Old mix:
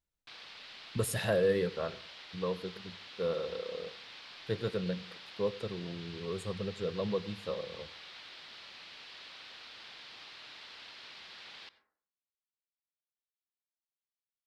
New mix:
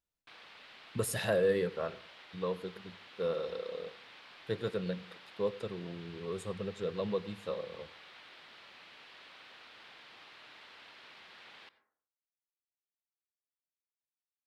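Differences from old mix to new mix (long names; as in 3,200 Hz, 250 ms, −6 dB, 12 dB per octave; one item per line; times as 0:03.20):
background: add parametric band 4,900 Hz −10 dB 1.4 octaves
master: add low-shelf EQ 110 Hz −7.5 dB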